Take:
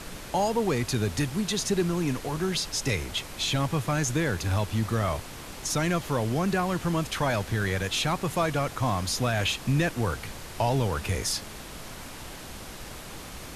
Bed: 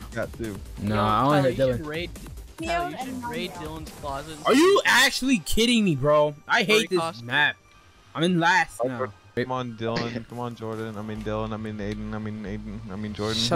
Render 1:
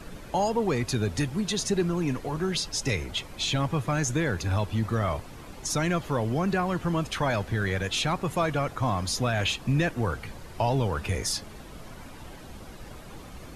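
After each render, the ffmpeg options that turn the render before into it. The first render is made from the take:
ffmpeg -i in.wav -af "afftdn=noise_reduction=10:noise_floor=-42" out.wav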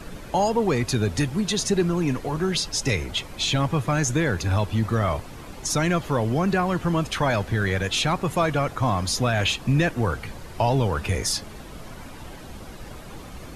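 ffmpeg -i in.wav -af "volume=4dB" out.wav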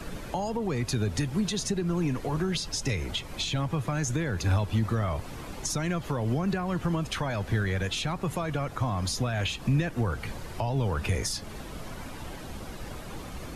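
ffmpeg -i in.wav -filter_complex "[0:a]alimiter=limit=-16.5dB:level=0:latency=1:release=239,acrossover=split=200[link_01][link_02];[link_02]acompressor=threshold=-29dB:ratio=6[link_03];[link_01][link_03]amix=inputs=2:normalize=0" out.wav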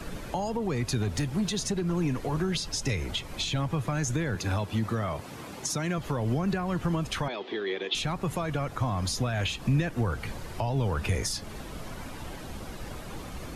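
ffmpeg -i in.wav -filter_complex "[0:a]asettb=1/sr,asplit=3[link_01][link_02][link_03];[link_01]atrim=end=1.024[link_04];[link_02]atrim=start=1.02:end=1.96,asetpts=PTS-STARTPTS,afade=type=in:duration=0.004:curve=qsin,afade=type=out:start_time=0.936:duration=0.004:curve=qsin,asoftclip=type=hard:threshold=-22.5dB[link_05];[link_03]atrim=start=1.956[link_06];[link_04][link_05]acrossfade=duration=0.004:curve1=hsin:curve2=qsin[link_07];[link_07][link_06]acrossfade=duration=0.004:curve1=qsin:curve2=hsin,asettb=1/sr,asplit=3[link_08][link_09][link_10];[link_08]atrim=end=4.354[link_11];[link_09]atrim=start=4.35:end=5.98,asetpts=PTS-STARTPTS,afade=type=in:duration=0.004:curve=qsin,afade=type=out:start_time=1.626:duration=0.004:curve=qsin,highpass=120[link_12];[link_10]atrim=start=5.976[link_13];[link_11][link_12]acrossfade=duration=0.004:curve1=hsin:curve2=qsin[link_14];[link_14][link_13]acrossfade=duration=0.004:curve1=qsin:curve2=hsin,asettb=1/sr,asplit=3[link_15][link_16][link_17];[link_15]atrim=end=7.284[link_18];[link_16]atrim=start=7.28:end=7.95,asetpts=PTS-STARTPTS,afade=type=in:duration=0.004:curve=qsin,afade=type=out:start_time=0.666:duration=0.004:curve=qsin,highpass=frequency=290:width=0.5412,highpass=frequency=290:width=1.3066,equalizer=frequency=380:width_type=q:width=4:gain=9,equalizer=frequency=570:width_type=q:width=4:gain=-6,equalizer=frequency=1500:width_type=q:width=4:gain=-10,equalizer=frequency=3400:width_type=q:width=4:gain=8,lowpass=frequency=4300:width=0.5412,lowpass=frequency=4300:width=1.3066[link_19];[link_17]atrim=start=7.946[link_20];[link_18][link_19]acrossfade=duration=0.004:curve1=hsin:curve2=qsin[link_21];[link_21][link_20]acrossfade=duration=0.004:curve1=qsin:curve2=hsin" out.wav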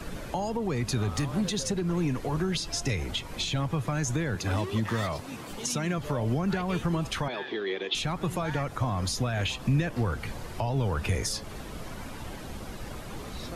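ffmpeg -i in.wav -i bed.wav -filter_complex "[1:a]volume=-20.5dB[link_01];[0:a][link_01]amix=inputs=2:normalize=0" out.wav

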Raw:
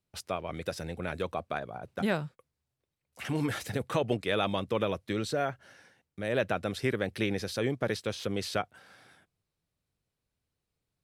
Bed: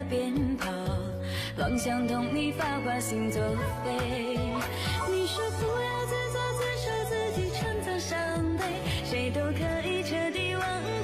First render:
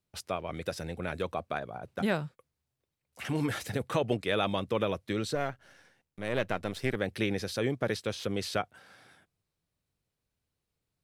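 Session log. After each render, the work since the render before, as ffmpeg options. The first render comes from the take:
ffmpeg -i in.wav -filter_complex "[0:a]asettb=1/sr,asplit=3[link_01][link_02][link_03];[link_01]atrim=end=5.354[link_04];[link_02]atrim=start=5.35:end=6.96,asetpts=PTS-STARTPTS,afade=type=in:duration=0.004:curve=qsin,afade=type=out:start_time=1.606:duration=0.004:curve=qsin,aeval=exprs='if(lt(val(0),0),0.447*val(0),val(0))':channel_layout=same[link_05];[link_03]atrim=start=6.956[link_06];[link_04][link_05]acrossfade=duration=0.004:curve1=hsin:curve2=qsin[link_07];[link_07][link_06]acrossfade=duration=0.004:curve1=qsin:curve2=hsin" out.wav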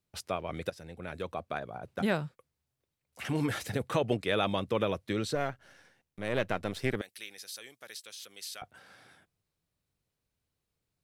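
ffmpeg -i in.wav -filter_complex "[0:a]asettb=1/sr,asplit=3[link_01][link_02][link_03];[link_01]atrim=end=7.014[link_04];[link_02]atrim=start=7.01:end=8.62,asetpts=PTS-STARTPTS,afade=type=in:duration=0.004:curve=qsin,afade=type=out:start_time=1.606:duration=0.004:curve=qsin,aderivative[link_05];[link_03]atrim=start=8.616[link_06];[link_04][link_05]acrossfade=duration=0.004:curve1=hsin:curve2=qsin[link_07];[link_07][link_06]acrossfade=duration=0.004:curve1=qsin:curve2=hsin,asplit=2[link_08][link_09];[link_08]atrim=end=0.7,asetpts=PTS-STARTPTS,afade=type=out:start_time=0.696:duration=0.004:curve=hsin:silence=0.237137[link_10];[link_09]atrim=start=0.7,asetpts=PTS-STARTPTS,afade=type=in:duration=1.53:curve=qsin:silence=0.237137[link_11];[link_10][link_11]concat=n=2:v=0:a=1" out.wav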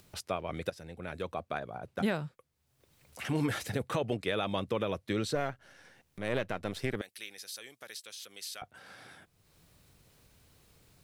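ffmpeg -i in.wav -af "alimiter=limit=-19dB:level=0:latency=1:release=174,acompressor=mode=upward:threshold=-44dB:ratio=2.5" out.wav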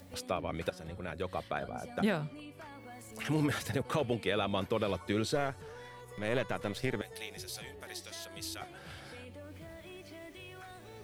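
ffmpeg -i in.wav -i bed.wav -filter_complex "[1:a]volume=-19.5dB[link_01];[0:a][link_01]amix=inputs=2:normalize=0" out.wav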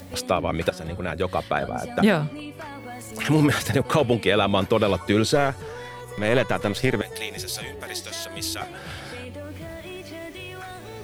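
ffmpeg -i in.wav -af "volume=12dB" out.wav

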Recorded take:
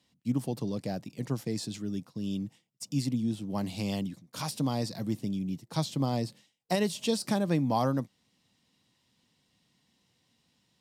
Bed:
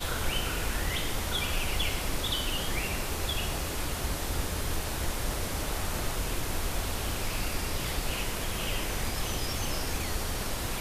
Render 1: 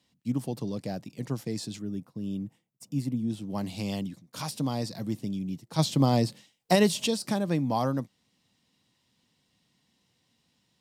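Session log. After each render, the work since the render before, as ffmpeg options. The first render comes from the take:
ffmpeg -i in.wav -filter_complex "[0:a]asettb=1/sr,asplit=3[link_01][link_02][link_03];[link_01]atrim=end=1.794[link_04];[link_02]atrim=start=1.79:end=3.3,asetpts=PTS-STARTPTS,afade=type=in:duration=0.004:curve=qsin,afade=type=out:start_time=1.506:duration=0.004:curve=qsin,equalizer=frequency=4800:width_type=o:width=2.1:gain=-10.5[link_05];[link_03]atrim=start=3.296[link_06];[link_04][link_05]acrossfade=duration=0.004:curve1=hsin:curve2=qsin[link_07];[link_07][link_06]acrossfade=duration=0.004:curve1=qsin:curve2=hsin,asplit=3[link_08][link_09][link_10];[link_08]afade=type=out:start_time=5.78:duration=0.02[link_11];[link_09]acontrast=71,afade=type=in:start_time=5.78:duration=0.02,afade=type=out:start_time=7.06:duration=0.02[link_12];[link_10]afade=type=in:start_time=7.06:duration=0.02[link_13];[link_11][link_12][link_13]amix=inputs=3:normalize=0" out.wav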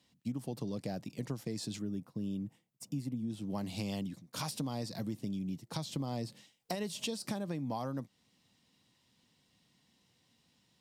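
ffmpeg -i in.wav -af "alimiter=limit=-19dB:level=0:latency=1:release=485,acompressor=threshold=-34dB:ratio=6" out.wav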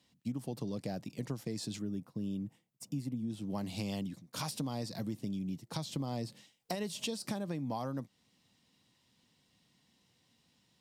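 ffmpeg -i in.wav -af anull out.wav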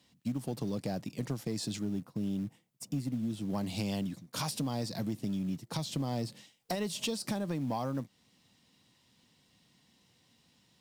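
ffmpeg -i in.wav -filter_complex "[0:a]asplit=2[link_01][link_02];[link_02]acrusher=bits=4:mode=log:mix=0:aa=0.000001,volume=-4.5dB[link_03];[link_01][link_03]amix=inputs=2:normalize=0,asoftclip=type=tanh:threshold=-23dB" out.wav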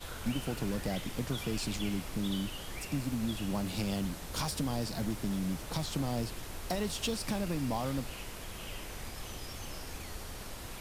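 ffmpeg -i in.wav -i bed.wav -filter_complex "[1:a]volume=-11dB[link_01];[0:a][link_01]amix=inputs=2:normalize=0" out.wav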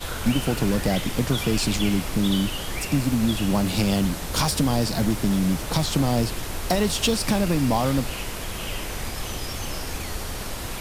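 ffmpeg -i in.wav -af "volume=12dB" out.wav

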